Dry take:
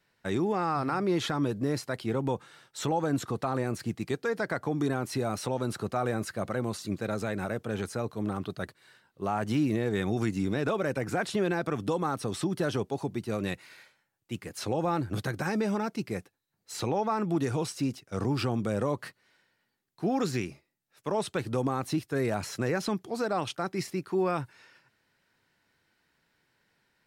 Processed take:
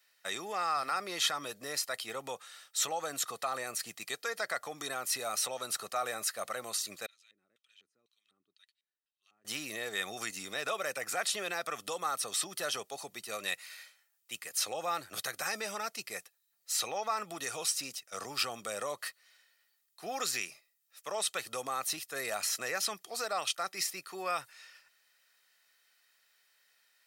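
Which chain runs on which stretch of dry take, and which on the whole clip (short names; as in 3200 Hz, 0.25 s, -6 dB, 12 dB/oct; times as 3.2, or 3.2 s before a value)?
7.06–9.45 passive tone stack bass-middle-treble 6-0-2 + LFO band-pass square 2 Hz 320–3100 Hz
whole clip: HPF 700 Hz 6 dB/oct; tilt +3.5 dB/oct; comb 1.6 ms, depth 42%; gain -2 dB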